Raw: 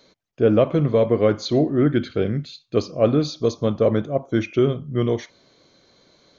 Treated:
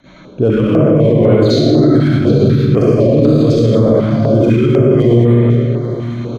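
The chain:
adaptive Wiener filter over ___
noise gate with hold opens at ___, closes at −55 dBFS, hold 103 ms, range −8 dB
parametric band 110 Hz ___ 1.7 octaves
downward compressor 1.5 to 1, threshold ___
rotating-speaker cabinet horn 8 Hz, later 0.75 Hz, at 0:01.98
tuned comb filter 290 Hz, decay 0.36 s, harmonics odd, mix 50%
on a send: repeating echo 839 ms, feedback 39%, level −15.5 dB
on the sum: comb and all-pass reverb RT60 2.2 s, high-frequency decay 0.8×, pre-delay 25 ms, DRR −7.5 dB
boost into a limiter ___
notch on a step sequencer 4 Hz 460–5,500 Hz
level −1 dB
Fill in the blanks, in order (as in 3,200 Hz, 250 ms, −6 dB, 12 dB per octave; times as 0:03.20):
9 samples, −51 dBFS, +4 dB, −50 dBFS, +27.5 dB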